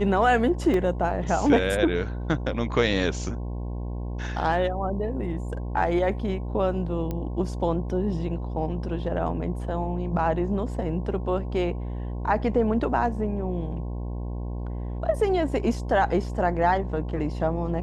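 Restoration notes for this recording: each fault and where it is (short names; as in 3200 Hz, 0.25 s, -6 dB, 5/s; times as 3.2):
buzz 60 Hz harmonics 18 -31 dBFS
0.74 gap 2.1 ms
7.11 pop -18 dBFS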